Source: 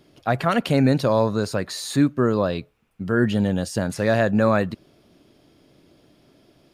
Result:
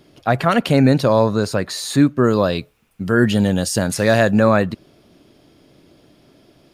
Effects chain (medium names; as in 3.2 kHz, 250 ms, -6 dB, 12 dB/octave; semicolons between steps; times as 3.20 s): 2.24–4.40 s: treble shelf 3.7 kHz +8.5 dB; trim +4.5 dB